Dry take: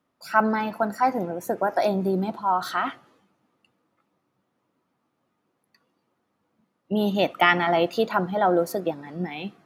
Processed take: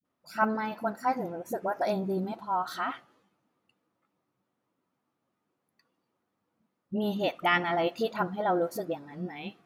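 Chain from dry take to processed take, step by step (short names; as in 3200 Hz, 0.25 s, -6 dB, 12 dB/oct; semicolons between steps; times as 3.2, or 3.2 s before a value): dispersion highs, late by 49 ms, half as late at 360 Hz; gain -6.5 dB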